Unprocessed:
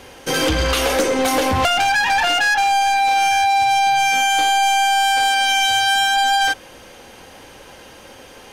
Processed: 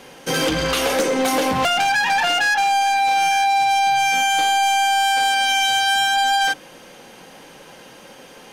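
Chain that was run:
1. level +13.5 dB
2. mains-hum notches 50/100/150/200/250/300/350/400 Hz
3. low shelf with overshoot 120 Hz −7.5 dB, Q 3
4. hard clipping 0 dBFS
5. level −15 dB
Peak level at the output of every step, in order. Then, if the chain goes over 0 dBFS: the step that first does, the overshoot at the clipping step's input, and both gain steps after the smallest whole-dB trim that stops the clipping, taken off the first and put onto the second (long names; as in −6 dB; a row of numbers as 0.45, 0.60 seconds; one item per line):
+5.0, +5.0, +5.5, 0.0, −15.0 dBFS
step 1, 5.5 dB
step 1 +7.5 dB, step 5 −9 dB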